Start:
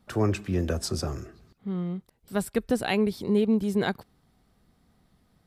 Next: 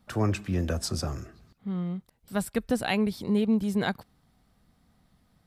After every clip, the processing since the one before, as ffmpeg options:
ffmpeg -i in.wav -af "equalizer=frequency=390:width=2.8:gain=-6" out.wav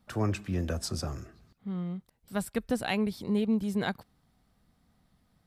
ffmpeg -i in.wav -af "aeval=exprs='0.237*(cos(1*acos(clip(val(0)/0.237,-1,1)))-cos(1*PI/2))+0.00668*(cos(3*acos(clip(val(0)/0.237,-1,1)))-cos(3*PI/2))':channel_layout=same,volume=-2.5dB" out.wav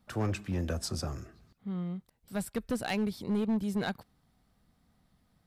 ffmpeg -i in.wav -af "asoftclip=type=hard:threshold=-24dB,volume=-1dB" out.wav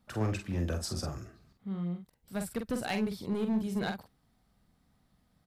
ffmpeg -i in.wav -filter_complex "[0:a]asplit=2[link_01][link_02];[link_02]adelay=46,volume=-6dB[link_03];[link_01][link_03]amix=inputs=2:normalize=0,volume=-1.5dB" out.wav

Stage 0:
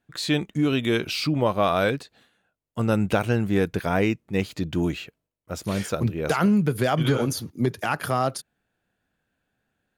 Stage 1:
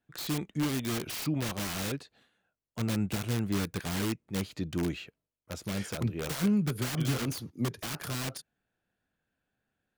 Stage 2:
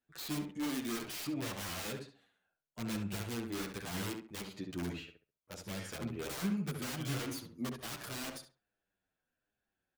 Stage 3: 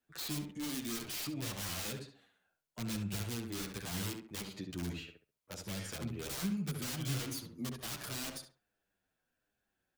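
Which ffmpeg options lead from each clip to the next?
ffmpeg -i in.wav -filter_complex "[0:a]highshelf=frequency=11000:gain=-6,acrossover=split=340[link_01][link_02];[link_02]aeval=exprs='(mod(17.8*val(0)+1,2)-1)/17.8':channel_layout=same[link_03];[link_01][link_03]amix=inputs=2:normalize=0,volume=-6.5dB" out.wav
ffmpeg -i in.wav -filter_complex "[0:a]equalizer=frequency=130:width_type=o:width=1.7:gain=-6,asplit=2[link_01][link_02];[link_02]adelay=68,lowpass=frequency=2300:poles=1,volume=-5dB,asplit=2[link_03][link_04];[link_04]adelay=68,lowpass=frequency=2300:poles=1,volume=0.27,asplit=2[link_05][link_06];[link_06]adelay=68,lowpass=frequency=2300:poles=1,volume=0.27,asplit=2[link_07][link_08];[link_08]adelay=68,lowpass=frequency=2300:poles=1,volume=0.27[link_09];[link_03][link_05][link_07][link_09]amix=inputs=4:normalize=0[link_10];[link_01][link_10]amix=inputs=2:normalize=0,asplit=2[link_11][link_12];[link_12]adelay=8.8,afreqshift=-1.2[link_13];[link_11][link_13]amix=inputs=2:normalize=1,volume=-2.5dB" out.wav
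ffmpeg -i in.wav -filter_complex "[0:a]acrossover=split=180|3000[link_01][link_02][link_03];[link_02]acompressor=threshold=-51dB:ratio=2[link_04];[link_01][link_04][link_03]amix=inputs=3:normalize=0,volume=3dB" out.wav

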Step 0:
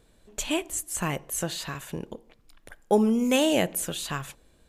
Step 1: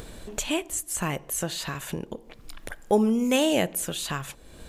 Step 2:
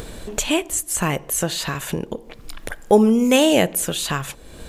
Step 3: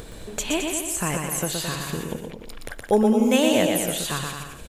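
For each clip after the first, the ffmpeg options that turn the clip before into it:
ffmpeg -i in.wav -af "acompressor=mode=upward:threshold=-26dB:ratio=2.5" out.wav
ffmpeg -i in.wav -af "equalizer=frequency=460:width_type=o:width=0.28:gain=2,volume=7dB" out.wav
ffmpeg -i in.wav -af "aecho=1:1:120|216|292.8|354.2|403.4:0.631|0.398|0.251|0.158|0.1,volume=-5.5dB" out.wav

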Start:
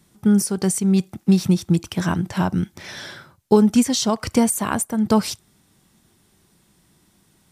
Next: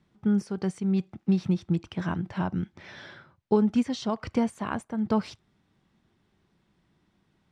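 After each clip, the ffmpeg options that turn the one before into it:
ffmpeg -i in.wav -af "lowpass=3100,volume=-8dB" out.wav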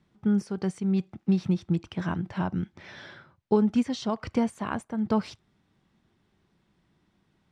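ffmpeg -i in.wav -af anull out.wav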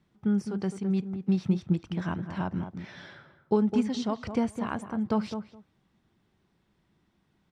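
ffmpeg -i in.wav -filter_complex "[0:a]asplit=2[link_01][link_02];[link_02]adelay=209,lowpass=frequency=1200:poles=1,volume=-8dB,asplit=2[link_03][link_04];[link_04]adelay=209,lowpass=frequency=1200:poles=1,volume=0.15[link_05];[link_01][link_03][link_05]amix=inputs=3:normalize=0,volume=-2dB" out.wav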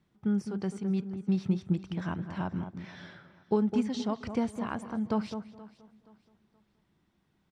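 ffmpeg -i in.wav -af "aecho=1:1:475|950|1425:0.1|0.032|0.0102,volume=-2.5dB" out.wav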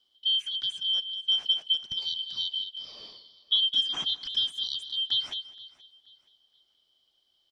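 ffmpeg -i in.wav -af "afftfilt=real='real(if(lt(b,272),68*(eq(floor(b/68),0)*2+eq(floor(b/68),1)*3+eq(floor(b/68),2)*0+eq(floor(b/68),3)*1)+mod(b,68),b),0)':imag='imag(if(lt(b,272),68*(eq(floor(b/68),0)*2+eq(floor(b/68),1)*3+eq(floor(b/68),2)*0+eq(floor(b/68),3)*1)+mod(b,68),b),0)':win_size=2048:overlap=0.75,volume=1.5dB" out.wav

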